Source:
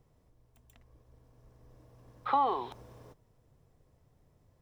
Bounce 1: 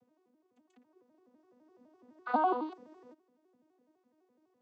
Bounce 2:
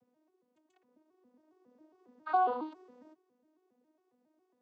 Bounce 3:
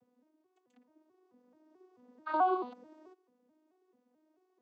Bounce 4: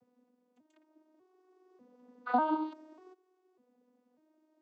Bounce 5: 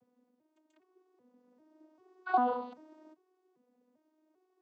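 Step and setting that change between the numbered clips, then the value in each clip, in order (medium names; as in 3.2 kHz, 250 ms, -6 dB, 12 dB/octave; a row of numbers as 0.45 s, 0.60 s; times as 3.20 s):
vocoder on a broken chord, a note every: 84 ms, 137 ms, 218 ms, 595 ms, 395 ms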